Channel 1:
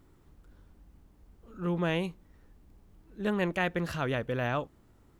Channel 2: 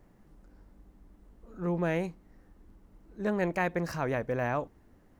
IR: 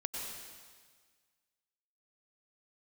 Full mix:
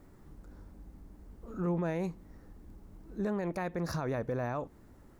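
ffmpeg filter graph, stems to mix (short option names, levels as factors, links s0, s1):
-filter_complex "[0:a]equalizer=f=2900:w=2.2:g=-10,acompressor=threshold=0.02:ratio=6,volume=1.26[s0];[1:a]volume=1[s1];[s0][s1]amix=inputs=2:normalize=0,alimiter=level_in=1.19:limit=0.0631:level=0:latency=1:release=129,volume=0.841"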